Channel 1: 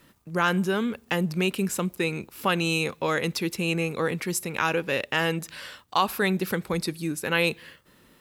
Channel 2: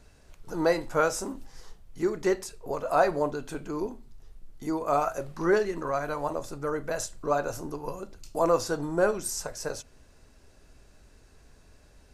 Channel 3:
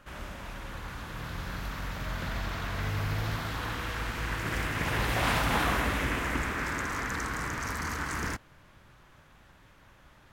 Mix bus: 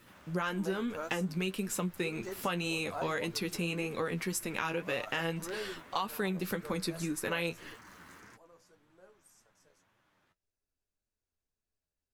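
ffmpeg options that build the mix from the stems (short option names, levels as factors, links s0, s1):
-filter_complex "[0:a]volume=1.12,asplit=2[s0][s1];[1:a]highshelf=f=4900:g=7,volume=0.266[s2];[2:a]highpass=140,acompressor=threshold=0.0126:ratio=6,volume=0.316[s3];[s1]apad=whole_len=535310[s4];[s2][s4]sidechaingate=range=0.0891:threshold=0.00562:ratio=16:detection=peak[s5];[s0][s5][s3]amix=inputs=3:normalize=0,flanger=delay=8.4:depth=3.9:regen=36:speed=1.8:shape=triangular,acompressor=threshold=0.0282:ratio=4"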